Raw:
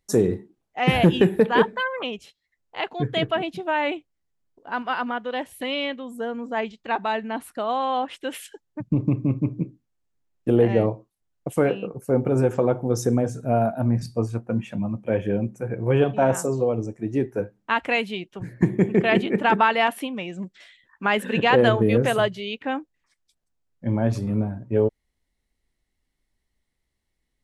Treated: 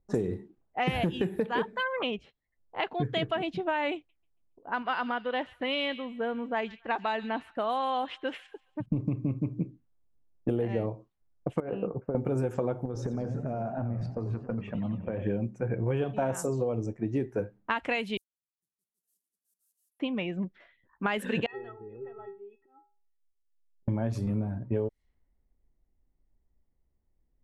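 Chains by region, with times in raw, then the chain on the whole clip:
0:03.95–0:08.86: low-shelf EQ 490 Hz −4 dB + delay with a high-pass on its return 139 ms, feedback 56%, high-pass 3,300 Hz, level −9.5 dB
0:11.60–0:12.15: low-pass filter 1,200 Hz + low-shelf EQ 500 Hz −5.5 dB + compressor whose output falls as the input rises −29 dBFS
0:12.85–0:15.23: downward compressor 16 to 1, threshold −28 dBFS + feedback echo with a swinging delay time 94 ms, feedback 63%, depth 208 cents, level −11 dB
0:18.17–0:20.00: one scale factor per block 3 bits + inverse Chebyshev high-pass filter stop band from 2,400 Hz, stop band 80 dB
0:21.46–0:23.88: volume swells 235 ms + high-frequency loss of the air 460 metres + stiff-string resonator 390 Hz, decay 0.43 s, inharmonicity 0.03
whole clip: low-pass that shuts in the quiet parts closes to 810 Hz, open at −20 dBFS; low-shelf EQ 65 Hz +7.5 dB; downward compressor, threshold −26 dBFS

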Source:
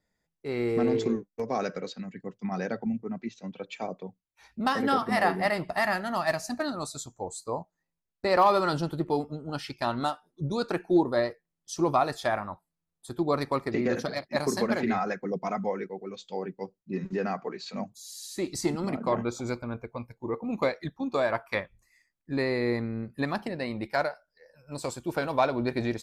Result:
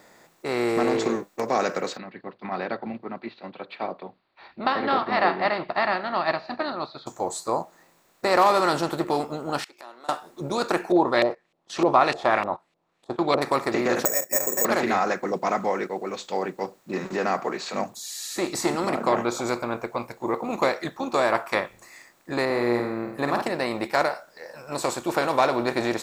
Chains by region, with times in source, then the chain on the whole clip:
0:01.97–0:07.07: Chebyshev low-pass filter 4,600 Hz, order 8 + notch filter 480 Hz, Q 8.2 + expander for the loud parts, over −46 dBFS
0:09.64–0:10.09: high-pass filter 330 Hz 24 dB per octave + upward compression, threshold −30 dBFS + gate with flip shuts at −33 dBFS, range −35 dB
0:10.92–0:13.42: noise gate −45 dBFS, range −21 dB + auto-filter low-pass saw up 3.3 Hz 500–2,800 Hz + high shelf with overshoot 2,200 Hz +12 dB, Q 1.5
0:14.05–0:14.65: formant resonators in series e + bad sample-rate conversion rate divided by 6×, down none, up zero stuff + multiband upward and downward compressor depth 100%
0:22.45–0:23.42: parametric band 5,600 Hz −10.5 dB 2.9 octaves + flutter between parallel walls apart 8.6 metres, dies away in 0.41 s
whole clip: compressor on every frequency bin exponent 0.6; low-shelf EQ 220 Hz −11 dB; level +1.5 dB

